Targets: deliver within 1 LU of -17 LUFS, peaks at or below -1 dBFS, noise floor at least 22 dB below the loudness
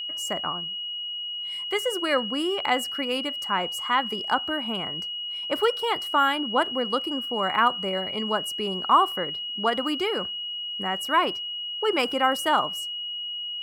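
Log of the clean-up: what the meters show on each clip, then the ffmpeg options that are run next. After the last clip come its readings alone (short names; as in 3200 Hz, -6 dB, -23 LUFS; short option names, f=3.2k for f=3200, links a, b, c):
steady tone 2900 Hz; tone level -30 dBFS; loudness -25.5 LUFS; peak -7.5 dBFS; loudness target -17.0 LUFS
-> -af "bandreject=f=2.9k:w=30"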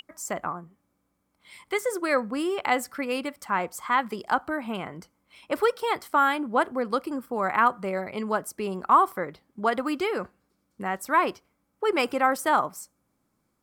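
steady tone none; loudness -26.5 LUFS; peak -8.0 dBFS; loudness target -17.0 LUFS
-> -af "volume=9.5dB,alimiter=limit=-1dB:level=0:latency=1"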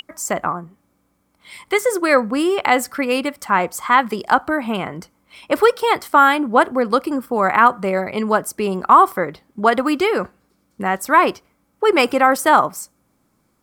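loudness -17.5 LUFS; peak -1.0 dBFS; noise floor -65 dBFS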